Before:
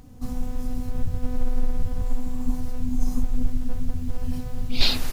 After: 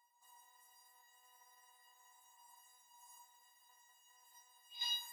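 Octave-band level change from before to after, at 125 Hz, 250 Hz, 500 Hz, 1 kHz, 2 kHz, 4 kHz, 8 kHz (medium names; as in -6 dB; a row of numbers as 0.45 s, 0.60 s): under -40 dB, under -40 dB, under -40 dB, -16.5 dB, -19.5 dB, -13.0 dB, no reading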